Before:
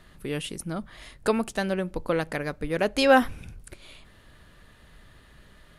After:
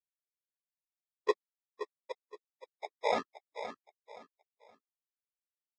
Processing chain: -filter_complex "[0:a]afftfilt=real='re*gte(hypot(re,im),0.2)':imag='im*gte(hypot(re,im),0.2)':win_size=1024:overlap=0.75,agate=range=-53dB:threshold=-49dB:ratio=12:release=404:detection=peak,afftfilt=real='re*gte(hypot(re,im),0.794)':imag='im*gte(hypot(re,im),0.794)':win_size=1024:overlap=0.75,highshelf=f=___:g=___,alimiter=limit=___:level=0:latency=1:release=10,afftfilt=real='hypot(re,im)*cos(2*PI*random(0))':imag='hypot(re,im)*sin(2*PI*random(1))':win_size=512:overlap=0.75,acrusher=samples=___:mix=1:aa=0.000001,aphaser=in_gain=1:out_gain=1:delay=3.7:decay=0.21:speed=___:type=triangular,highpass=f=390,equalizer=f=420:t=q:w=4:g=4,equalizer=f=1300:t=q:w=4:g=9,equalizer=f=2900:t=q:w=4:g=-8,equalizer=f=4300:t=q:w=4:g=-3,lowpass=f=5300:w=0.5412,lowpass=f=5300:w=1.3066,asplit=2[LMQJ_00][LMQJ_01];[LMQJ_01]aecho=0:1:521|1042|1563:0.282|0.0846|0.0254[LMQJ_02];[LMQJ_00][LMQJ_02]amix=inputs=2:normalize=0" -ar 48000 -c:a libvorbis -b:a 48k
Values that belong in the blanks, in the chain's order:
2400, 11, -13.5dB, 30, 1.5